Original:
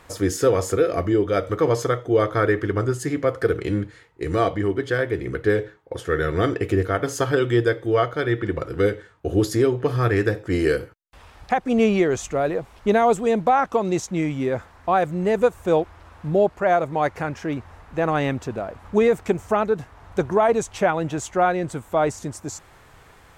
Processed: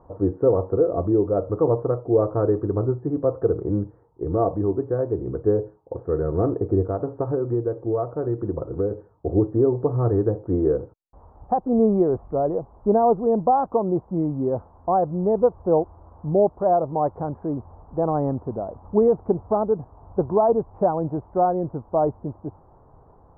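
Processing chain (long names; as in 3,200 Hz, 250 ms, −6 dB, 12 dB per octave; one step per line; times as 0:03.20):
Butterworth low-pass 1,000 Hz 36 dB per octave
0:06.89–0:08.91: downward compressor 3 to 1, threshold −21 dBFS, peak gain reduction 6 dB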